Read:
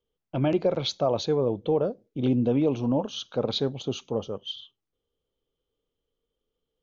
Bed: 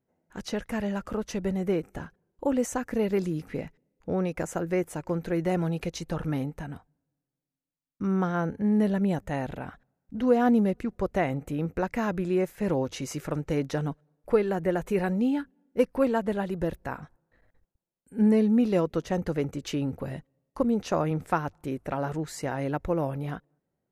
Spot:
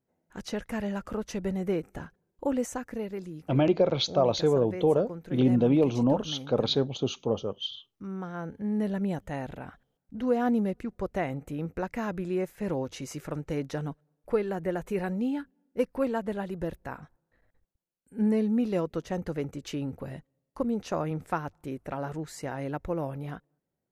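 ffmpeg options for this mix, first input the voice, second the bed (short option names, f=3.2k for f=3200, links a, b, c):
-filter_complex "[0:a]adelay=3150,volume=1dB[a];[1:a]volume=4.5dB,afade=t=out:st=2.5:d=0.65:silence=0.375837,afade=t=in:st=8.23:d=0.75:silence=0.473151[b];[a][b]amix=inputs=2:normalize=0"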